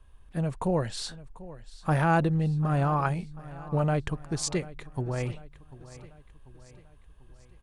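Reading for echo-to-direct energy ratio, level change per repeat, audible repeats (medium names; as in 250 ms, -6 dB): -16.5 dB, -6.0 dB, 3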